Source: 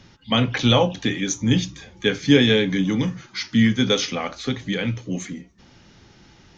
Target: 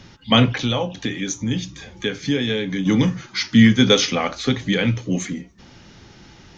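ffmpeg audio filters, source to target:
-filter_complex "[0:a]asplit=3[s0][s1][s2];[s0]afade=t=out:st=0.52:d=0.02[s3];[s1]acompressor=threshold=0.0251:ratio=2,afade=t=in:st=0.52:d=0.02,afade=t=out:st=2.85:d=0.02[s4];[s2]afade=t=in:st=2.85:d=0.02[s5];[s3][s4][s5]amix=inputs=3:normalize=0,volume=1.78"

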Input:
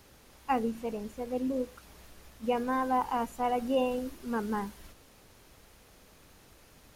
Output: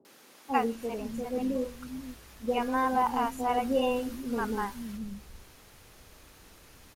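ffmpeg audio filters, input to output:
-filter_complex "[0:a]acrossover=split=200|600[s0][s1][s2];[s2]adelay=50[s3];[s0]adelay=490[s4];[s4][s1][s3]amix=inputs=3:normalize=0,volume=1.58"

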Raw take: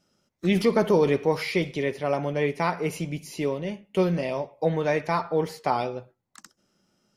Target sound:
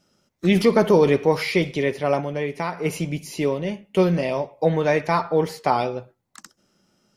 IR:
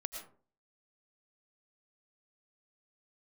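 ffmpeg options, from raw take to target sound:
-filter_complex "[0:a]asplit=3[s0][s1][s2];[s0]afade=t=out:st=2.2:d=0.02[s3];[s1]acompressor=threshold=0.0282:ratio=2,afade=t=in:st=2.2:d=0.02,afade=t=out:st=2.84:d=0.02[s4];[s2]afade=t=in:st=2.84:d=0.02[s5];[s3][s4][s5]amix=inputs=3:normalize=0,volume=1.68"

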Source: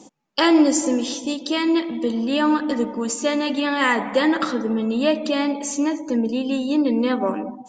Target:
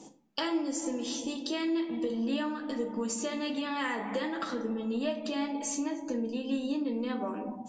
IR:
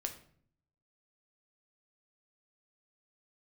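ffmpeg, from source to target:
-filter_complex "[0:a]acompressor=threshold=0.0501:ratio=6[s0];[1:a]atrim=start_sample=2205,asetrate=66150,aresample=44100[s1];[s0][s1]afir=irnorm=-1:irlink=0"

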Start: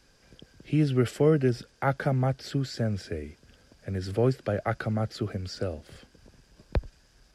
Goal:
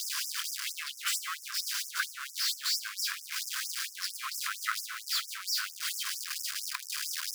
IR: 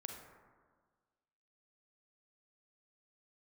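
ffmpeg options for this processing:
-filter_complex "[0:a]aeval=exprs='val(0)+0.5*0.0473*sgn(val(0))':c=same,asplit=2[s0][s1];[1:a]atrim=start_sample=2205[s2];[s1][s2]afir=irnorm=-1:irlink=0,volume=1.78[s3];[s0][s3]amix=inputs=2:normalize=0,afftfilt=real='re*gte(b*sr/1024,950*pow(5200/950,0.5+0.5*sin(2*PI*4.4*pts/sr)))':imag='im*gte(b*sr/1024,950*pow(5200/950,0.5+0.5*sin(2*PI*4.4*pts/sr)))':win_size=1024:overlap=0.75,volume=0.562"

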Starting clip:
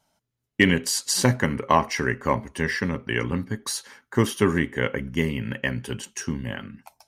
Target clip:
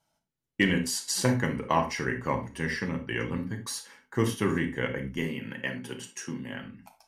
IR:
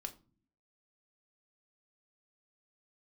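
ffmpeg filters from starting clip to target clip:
-filter_complex "[0:a]asettb=1/sr,asplit=3[s0][s1][s2];[s0]atrim=end=5.184[s3];[s1]atrim=start=5.18:end=6.55,asetpts=PTS-STARTPTS,afade=t=in:d=0.004:c=qsin,afade=t=out:st=1.366:d=0.004:c=qsin,highpass=190[s4];[s2]atrim=start=6.546[s5];[s3][s4]acrossfade=d=0.004:c1=hsin:c2=qsin[s6];[s6][s5]acrossfade=d=0.004:c1=qsin:c2=hsin[s7];[1:a]atrim=start_sample=2205,atrim=end_sample=3528,asetrate=28224,aresample=44100[s8];[s7][s8]afir=irnorm=-1:irlink=0,volume=0.562"

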